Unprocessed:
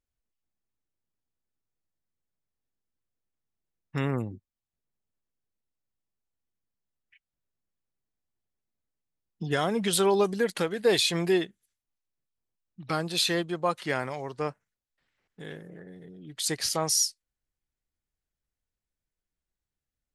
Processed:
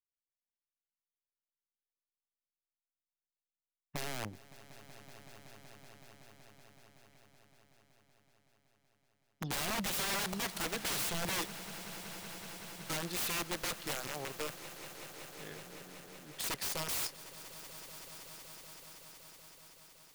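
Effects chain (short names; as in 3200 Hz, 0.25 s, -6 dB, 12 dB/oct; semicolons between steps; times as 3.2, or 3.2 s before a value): wrapped overs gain 25 dB; power-law curve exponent 1.4; swelling echo 0.188 s, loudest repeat 5, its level -18 dB; gain -4.5 dB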